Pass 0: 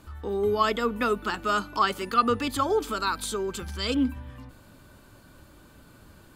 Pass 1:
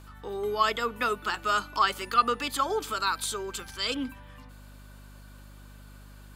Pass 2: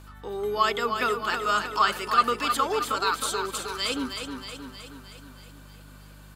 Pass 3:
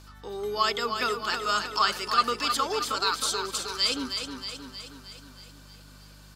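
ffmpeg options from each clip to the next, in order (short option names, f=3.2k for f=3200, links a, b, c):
-af "highpass=f=860:p=1,aeval=exprs='val(0)+0.00355*(sin(2*PI*50*n/s)+sin(2*PI*2*50*n/s)/2+sin(2*PI*3*50*n/s)/3+sin(2*PI*4*50*n/s)/4+sin(2*PI*5*50*n/s)/5)':c=same,volume=1.5dB"
-af "aecho=1:1:314|628|942|1256|1570|1884|2198:0.447|0.259|0.15|0.0872|0.0505|0.0293|0.017,volume=1.5dB"
-af "equalizer=f=5.2k:t=o:w=0.89:g=11,volume=-3dB"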